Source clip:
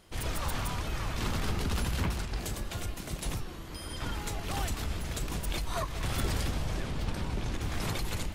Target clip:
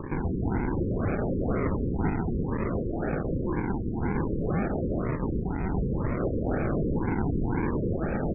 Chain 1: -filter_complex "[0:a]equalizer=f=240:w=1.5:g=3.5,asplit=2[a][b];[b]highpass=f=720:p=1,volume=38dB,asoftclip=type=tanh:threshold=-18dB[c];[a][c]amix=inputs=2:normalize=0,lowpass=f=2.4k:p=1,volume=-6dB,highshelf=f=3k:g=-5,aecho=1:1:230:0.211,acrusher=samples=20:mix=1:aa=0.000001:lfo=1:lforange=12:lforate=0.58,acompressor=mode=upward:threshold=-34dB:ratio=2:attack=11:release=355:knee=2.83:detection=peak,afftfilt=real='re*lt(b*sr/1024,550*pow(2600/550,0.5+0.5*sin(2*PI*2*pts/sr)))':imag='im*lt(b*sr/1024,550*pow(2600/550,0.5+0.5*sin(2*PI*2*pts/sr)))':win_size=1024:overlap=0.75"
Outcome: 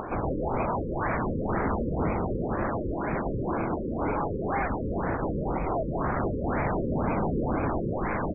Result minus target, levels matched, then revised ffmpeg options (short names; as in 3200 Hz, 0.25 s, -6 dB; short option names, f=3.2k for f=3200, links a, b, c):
decimation with a swept rate: distortion -8 dB
-filter_complex "[0:a]equalizer=f=240:w=1.5:g=3.5,asplit=2[a][b];[b]highpass=f=720:p=1,volume=38dB,asoftclip=type=tanh:threshold=-18dB[c];[a][c]amix=inputs=2:normalize=0,lowpass=f=2.4k:p=1,volume=-6dB,highshelf=f=3k:g=-5,aecho=1:1:230:0.211,acrusher=samples=60:mix=1:aa=0.000001:lfo=1:lforange=36:lforate=0.58,acompressor=mode=upward:threshold=-34dB:ratio=2:attack=11:release=355:knee=2.83:detection=peak,afftfilt=real='re*lt(b*sr/1024,550*pow(2600/550,0.5+0.5*sin(2*PI*2*pts/sr)))':imag='im*lt(b*sr/1024,550*pow(2600/550,0.5+0.5*sin(2*PI*2*pts/sr)))':win_size=1024:overlap=0.75"